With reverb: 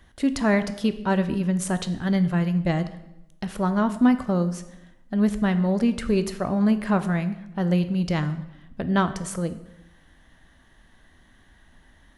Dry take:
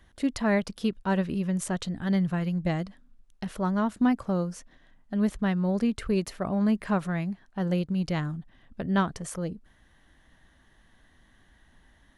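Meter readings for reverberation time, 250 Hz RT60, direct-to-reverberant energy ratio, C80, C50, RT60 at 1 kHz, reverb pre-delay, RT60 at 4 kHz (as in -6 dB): 0.90 s, 1.0 s, 10.5 dB, 15.5 dB, 13.5 dB, 0.85 s, 11 ms, 0.75 s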